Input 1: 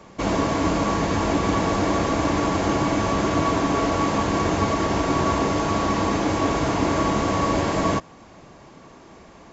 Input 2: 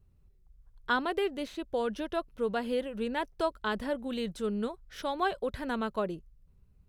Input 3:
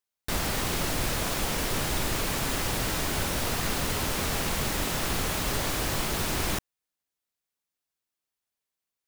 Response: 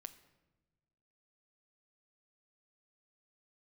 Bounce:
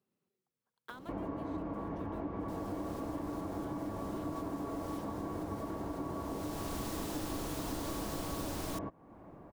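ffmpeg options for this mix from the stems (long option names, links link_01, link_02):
-filter_complex "[0:a]lowpass=1100,equalizer=frequency=300:width_type=o:width=0.22:gain=4.5,adelay=900,volume=-6.5dB[link_01];[1:a]highpass=frequency=210:width=0.5412,highpass=frequency=210:width=1.3066,acompressor=threshold=-39dB:ratio=8,acrusher=bits=4:mode=log:mix=0:aa=0.000001,volume=-5.5dB,asplit=2[link_02][link_03];[2:a]equalizer=frequency=2200:width=1.3:gain=-5.5,adelay=2200,volume=-0.5dB[link_04];[link_03]apad=whole_len=497018[link_05];[link_04][link_05]sidechaincompress=threshold=-59dB:ratio=8:attack=7.6:release=601[link_06];[link_01][link_02][link_06]amix=inputs=3:normalize=0,acompressor=threshold=-42dB:ratio=2.5"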